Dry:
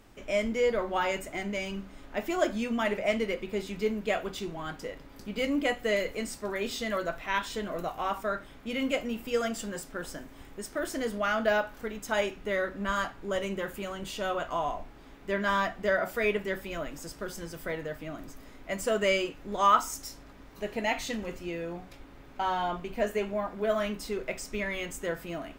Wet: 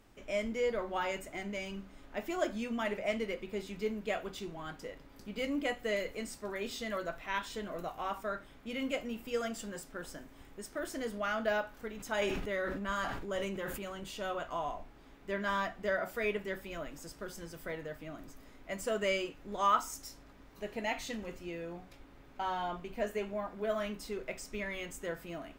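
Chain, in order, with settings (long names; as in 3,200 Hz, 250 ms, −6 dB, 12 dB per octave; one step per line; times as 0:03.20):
0:11.97–0:14.00: level that may fall only so fast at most 33 dB per second
level −6 dB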